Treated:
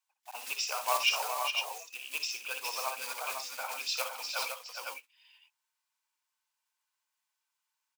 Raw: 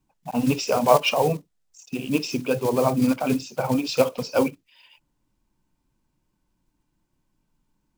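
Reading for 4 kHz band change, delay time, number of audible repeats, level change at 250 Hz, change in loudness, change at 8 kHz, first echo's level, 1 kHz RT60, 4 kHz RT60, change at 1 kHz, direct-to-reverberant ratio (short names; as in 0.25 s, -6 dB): -1.5 dB, 61 ms, 3, under -40 dB, -10.5 dB, -1.0 dB, -10.5 dB, none, none, -9.0 dB, none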